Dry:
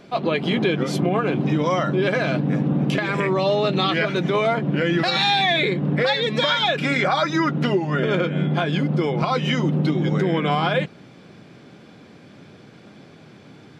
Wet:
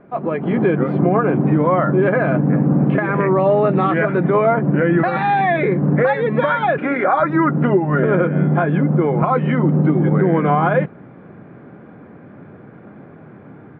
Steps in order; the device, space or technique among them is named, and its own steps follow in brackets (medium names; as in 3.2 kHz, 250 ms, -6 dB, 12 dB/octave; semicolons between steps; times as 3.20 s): 6.78–7.20 s: high-pass 240 Hz 24 dB/octave; action camera in a waterproof case (low-pass 1.7 kHz 24 dB/octave; level rider gain up to 6 dB; AAC 64 kbps 24 kHz)